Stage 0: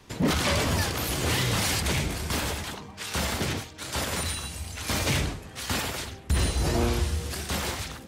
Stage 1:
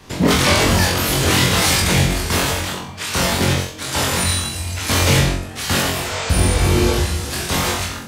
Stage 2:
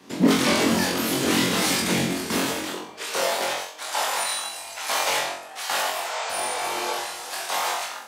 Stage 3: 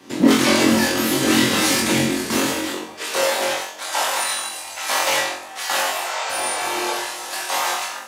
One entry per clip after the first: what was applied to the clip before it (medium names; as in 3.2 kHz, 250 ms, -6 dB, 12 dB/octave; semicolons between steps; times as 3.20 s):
spectral replace 5.96–6.89 s, 430–8400 Hz both; flutter echo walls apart 3.8 m, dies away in 0.42 s; trim +8 dB
high-pass sweep 240 Hz -> 750 Hz, 2.47–3.61 s; trim -7 dB
reverberation, pre-delay 3 ms, DRR 5 dB; trim +3 dB